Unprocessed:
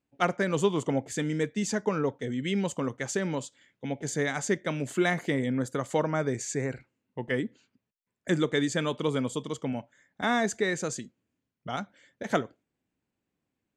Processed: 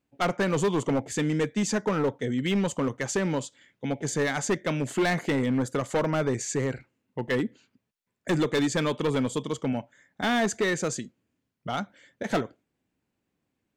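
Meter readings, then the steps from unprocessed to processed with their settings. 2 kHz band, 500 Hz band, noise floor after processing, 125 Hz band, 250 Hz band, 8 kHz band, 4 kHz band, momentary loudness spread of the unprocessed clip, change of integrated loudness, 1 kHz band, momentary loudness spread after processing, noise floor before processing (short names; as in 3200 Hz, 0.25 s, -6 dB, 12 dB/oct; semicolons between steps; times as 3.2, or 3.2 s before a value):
+1.5 dB, +2.0 dB, -81 dBFS, +2.5 dB, +2.5 dB, +2.5 dB, +2.5 dB, 12 LU, +2.0 dB, +1.5 dB, 10 LU, -85 dBFS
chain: high shelf 7700 Hz -3.5 dB; hard clip -24 dBFS, distortion -11 dB; gain +4 dB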